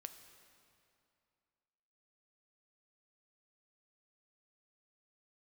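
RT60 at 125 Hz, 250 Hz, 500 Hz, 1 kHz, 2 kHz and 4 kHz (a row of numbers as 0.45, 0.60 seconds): 2.6, 2.5, 2.5, 2.6, 2.3, 2.1 seconds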